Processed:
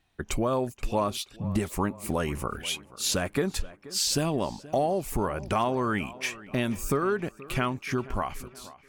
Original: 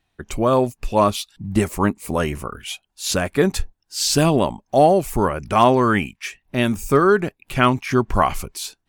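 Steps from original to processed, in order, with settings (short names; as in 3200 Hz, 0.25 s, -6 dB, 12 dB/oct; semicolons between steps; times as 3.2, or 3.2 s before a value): ending faded out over 1.78 s; compressor 4:1, threshold -25 dBFS, peak gain reduction 14 dB; tape echo 0.479 s, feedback 53%, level -17 dB, low-pass 3100 Hz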